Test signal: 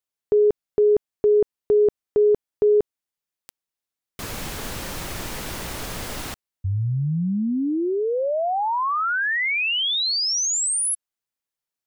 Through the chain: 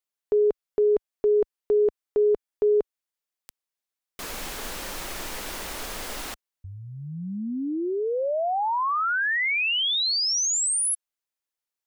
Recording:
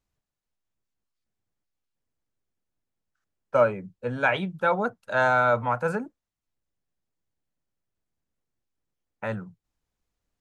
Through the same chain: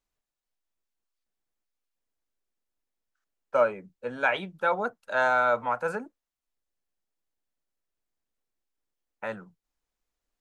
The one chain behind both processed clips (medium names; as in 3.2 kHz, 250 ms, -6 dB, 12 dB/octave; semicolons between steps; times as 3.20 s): peaking EQ 110 Hz -15 dB 1.6 oct; trim -1.5 dB